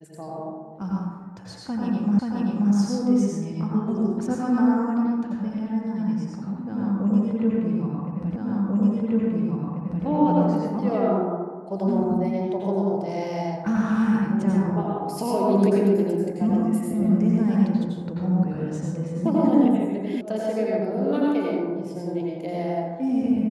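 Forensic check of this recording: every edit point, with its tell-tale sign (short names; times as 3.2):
2.19 repeat of the last 0.53 s
8.36 repeat of the last 1.69 s
20.21 sound cut off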